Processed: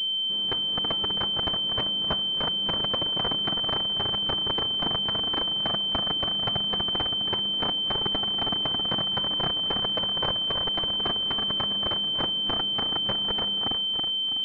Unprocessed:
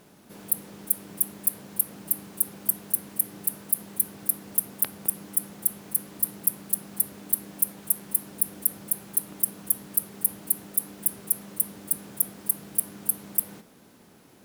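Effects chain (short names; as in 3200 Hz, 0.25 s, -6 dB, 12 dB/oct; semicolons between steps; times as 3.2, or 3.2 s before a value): regenerating reverse delay 0.163 s, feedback 66%, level -7 dB; pulse-width modulation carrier 3100 Hz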